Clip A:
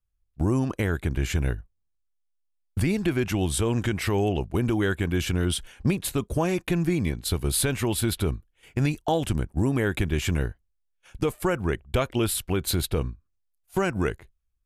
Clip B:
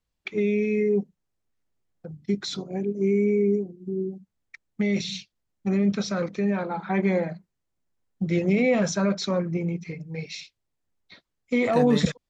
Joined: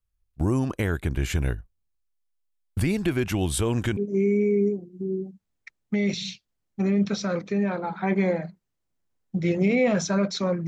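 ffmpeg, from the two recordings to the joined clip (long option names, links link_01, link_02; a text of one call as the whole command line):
ffmpeg -i cue0.wav -i cue1.wav -filter_complex "[0:a]apad=whole_dur=10.67,atrim=end=10.67,atrim=end=3.972[link_01];[1:a]atrim=start=2.838:end=9.54[link_02];[link_01][link_02]acrossfade=duration=0.004:curve1=hsin:curve2=hsin" out.wav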